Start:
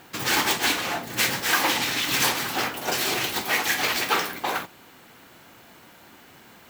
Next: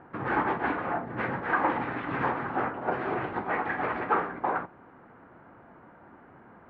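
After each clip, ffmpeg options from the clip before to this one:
ffmpeg -i in.wav -af "lowpass=frequency=1500:width=0.5412,lowpass=frequency=1500:width=1.3066" out.wav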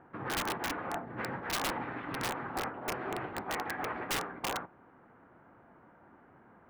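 ffmpeg -i in.wav -af "aeval=exprs='(mod(10*val(0)+1,2)-1)/10':channel_layout=same,volume=-6.5dB" out.wav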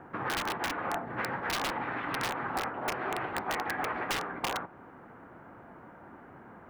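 ffmpeg -i in.wav -filter_complex "[0:a]acrossover=split=590|5800[link_01][link_02][link_03];[link_01]acompressor=threshold=-49dB:ratio=4[link_04];[link_02]acompressor=threshold=-40dB:ratio=4[link_05];[link_03]acompressor=threshold=-53dB:ratio=4[link_06];[link_04][link_05][link_06]amix=inputs=3:normalize=0,volume=8.5dB" out.wav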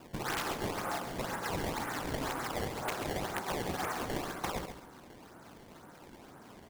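ffmpeg -i in.wav -af "acrusher=samples=20:mix=1:aa=0.000001:lfo=1:lforange=32:lforate=2,aecho=1:1:136|272|408:0.376|0.0977|0.0254,volume=-3dB" out.wav

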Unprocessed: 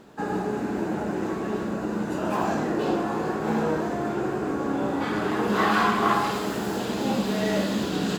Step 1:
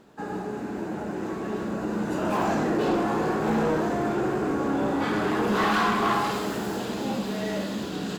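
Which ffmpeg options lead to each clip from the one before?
ffmpeg -i in.wav -af "dynaudnorm=framelen=230:gausssize=17:maxgain=9dB,asoftclip=type=tanh:threshold=-13dB,volume=-4.5dB" out.wav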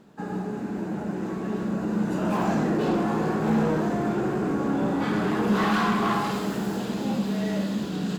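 ffmpeg -i in.wav -af "equalizer=frequency=180:width_type=o:width=0.79:gain=8.5,volume=-2dB" out.wav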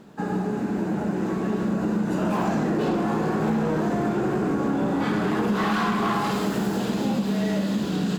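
ffmpeg -i in.wav -af "acompressor=threshold=-26dB:ratio=6,volume=5.5dB" out.wav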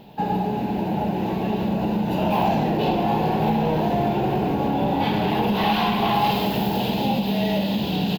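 ffmpeg -i in.wav -af "firequalizer=gain_entry='entry(110,0);entry(180,-6);entry(310,-9);entry(860,3);entry(1200,-17);entry(2700,3);entry(3900,0);entry(5800,-11);entry(8600,-21);entry(13000,5)':delay=0.05:min_phase=1,volume=7.5dB" out.wav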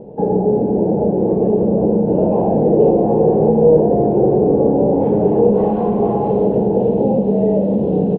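ffmpeg -i in.wav -filter_complex "[0:a]asplit=2[link_01][link_02];[link_02]alimiter=limit=-19dB:level=0:latency=1:release=404,volume=1dB[link_03];[link_01][link_03]amix=inputs=2:normalize=0,lowpass=frequency=480:width_type=q:width=4.9" out.wav

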